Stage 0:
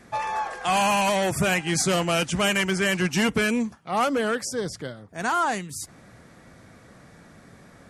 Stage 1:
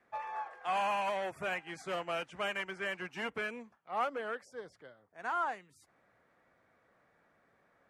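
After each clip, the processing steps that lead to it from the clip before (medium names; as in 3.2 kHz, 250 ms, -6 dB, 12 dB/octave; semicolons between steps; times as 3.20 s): three-band isolator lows -14 dB, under 400 Hz, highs -16 dB, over 2.8 kHz; upward expansion 1.5:1, over -35 dBFS; trim -8.5 dB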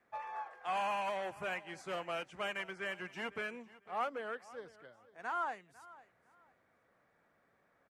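feedback delay 500 ms, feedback 23%, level -19.5 dB; trim -3 dB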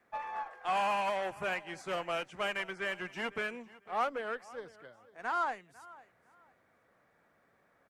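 Chebyshev shaper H 7 -35 dB, 8 -34 dB, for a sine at -25.5 dBFS; trim +4.5 dB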